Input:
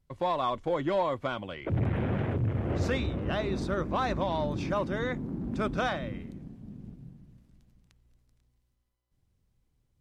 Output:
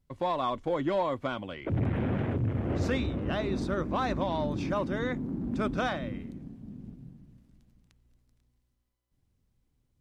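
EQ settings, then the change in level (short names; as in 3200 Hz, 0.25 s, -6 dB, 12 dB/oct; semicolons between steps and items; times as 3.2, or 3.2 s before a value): bell 260 Hz +4.5 dB 0.54 oct; -1.0 dB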